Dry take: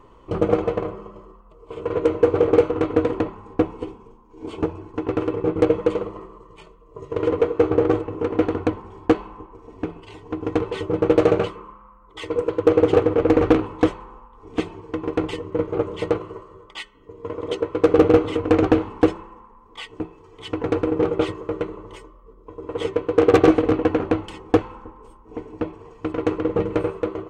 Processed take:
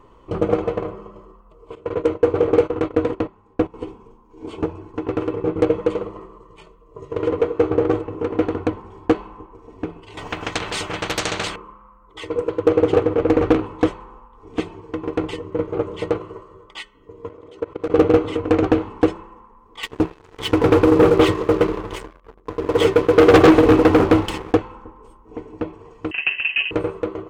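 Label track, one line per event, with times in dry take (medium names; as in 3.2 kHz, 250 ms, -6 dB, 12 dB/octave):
1.750000	3.740000	gate -27 dBFS, range -13 dB
10.170000	11.560000	spectrum-flattening compressor 4:1
17.290000	17.900000	level held to a coarse grid steps of 21 dB
19.830000	24.530000	waveshaping leveller passes 3
26.110000	26.710000	frequency inversion carrier 3 kHz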